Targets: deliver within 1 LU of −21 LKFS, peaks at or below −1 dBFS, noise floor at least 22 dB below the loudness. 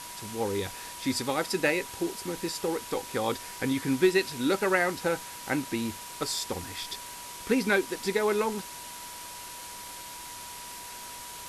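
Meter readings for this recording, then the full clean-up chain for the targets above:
interfering tone 970 Hz; level of the tone −45 dBFS; background noise floor −42 dBFS; target noise floor −53 dBFS; integrated loudness −30.5 LKFS; sample peak −11.0 dBFS; target loudness −21.0 LKFS
→ notch filter 970 Hz, Q 30
broadband denoise 11 dB, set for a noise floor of −42 dBFS
level +9.5 dB

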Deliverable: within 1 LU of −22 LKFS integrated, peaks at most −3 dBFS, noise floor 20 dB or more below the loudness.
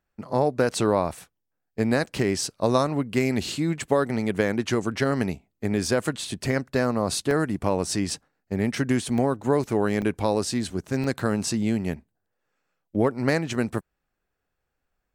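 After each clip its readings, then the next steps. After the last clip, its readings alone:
number of dropouts 6; longest dropout 1.2 ms; integrated loudness −25.5 LKFS; sample peak −7.0 dBFS; target loudness −22.0 LKFS
→ repair the gap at 0:00.69/0:07.31/0:08.10/0:09.18/0:10.02/0:11.04, 1.2 ms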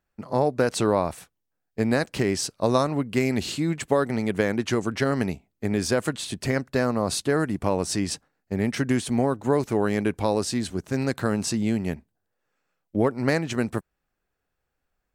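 number of dropouts 0; integrated loudness −25.5 LKFS; sample peak −7.0 dBFS; target loudness −22.0 LKFS
→ level +3.5 dB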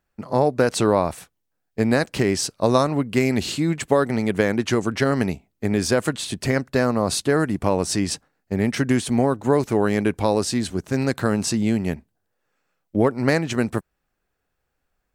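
integrated loudness −22.0 LKFS; sample peak −3.5 dBFS; background noise floor −76 dBFS

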